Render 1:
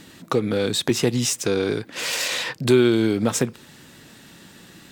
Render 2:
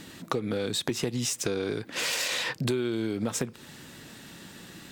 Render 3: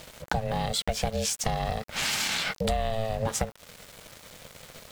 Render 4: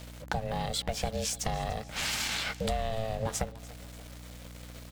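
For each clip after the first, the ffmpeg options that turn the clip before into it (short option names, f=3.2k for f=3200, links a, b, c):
-af "acompressor=threshold=-26dB:ratio=6"
-af "aeval=exprs='val(0)*gte(abs(val(0)),0.00668)':c=same,aeval=exprs='val(0)*sin(2*PI*330*n/s)':c=same,volume=4dB"
-af "aeval=exprs='val(0)+0.00891*(sin(2*PI*60*n/s)+sin(2*PI*2*60*n/s)/2+sin(2*PI*3*60*n/s)/3+sin(2*PI*4*60*n/s)/4+sin(2*PI*5*60*n/s)/5)':c=same,aecho=1:1:293|586|879|1172:0.1|0.054|0.0292|0.0157,volume=-4dB"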